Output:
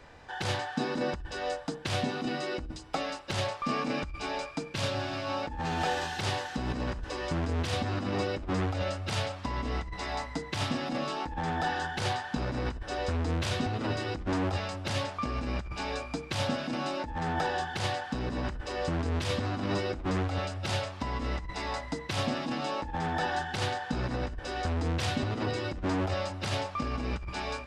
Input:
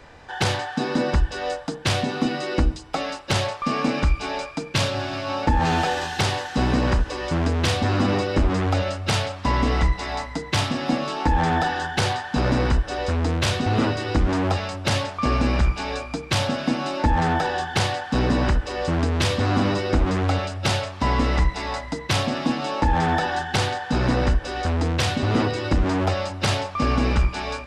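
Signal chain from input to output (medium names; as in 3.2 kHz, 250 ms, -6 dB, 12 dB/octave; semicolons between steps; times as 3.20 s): compressor with a negative ratio -22 dBFS, ratio -0.5; trim -8 dB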